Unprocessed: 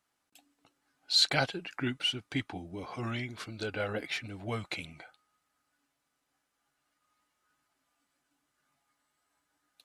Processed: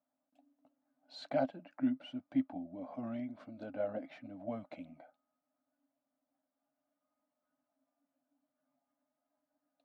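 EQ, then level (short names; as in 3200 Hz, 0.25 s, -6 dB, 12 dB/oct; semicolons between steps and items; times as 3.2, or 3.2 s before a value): double band-pass 400 Hz, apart 1.2 oct; +5.5 dB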